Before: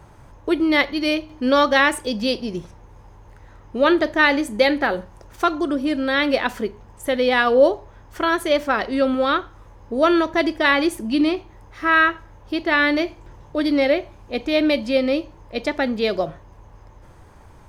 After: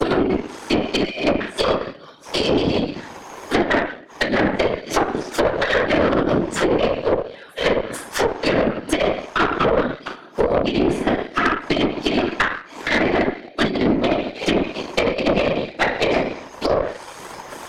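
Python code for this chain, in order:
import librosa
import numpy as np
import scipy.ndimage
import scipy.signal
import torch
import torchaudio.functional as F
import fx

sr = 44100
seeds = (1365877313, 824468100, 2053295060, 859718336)

y = fx.block_reorder(x, sr, ms=234.0, group=3)
y = fx.gate_flip(y, sr, shuts_db=-11.0, range_db=-41)
y = scipy.signal.sosfilt(scipy.signal.bessel(2, 450.0, 'highpass', norm='mag', fs=sr, output='sos'), y)
y = fx.high_shelf(y, sr, hz=2700.0, db=11.5)
y = fx.room_shoebox(y, sr, seeds[0], volume_m3=79.0, walls='mixed', distance_m=3.1)
y = fx.whisperise(y, sr, seeds[1])
y = fx.leveller(y, sr, passes=1)
y = fx.over_compress(y, sr, threshold_db=-11.0, ratio=-0.5)
y = fx.env_lowpass_down(y, sr, base_hz=1600.0, full_db=-9.0)
y = fx.tube_stage(y, sr, drive_db=10.0, bias=0.7)
y = fx.band_squash(y, sr, depth_pct=40)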